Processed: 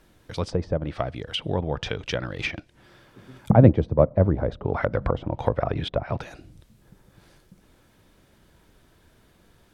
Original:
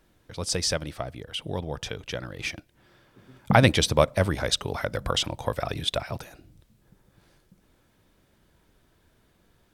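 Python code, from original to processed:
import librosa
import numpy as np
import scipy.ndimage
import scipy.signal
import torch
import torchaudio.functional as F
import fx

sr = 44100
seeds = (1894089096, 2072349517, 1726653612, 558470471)

y = fx.env_lowpass_down(x, sr, base_hz=600.0, full_db=-23.0)
y = fx.band_widen(y, sr, depth_pct=100, at=(3.52, 4.11))
y = y * librosa.db_to_amplitude(5.5)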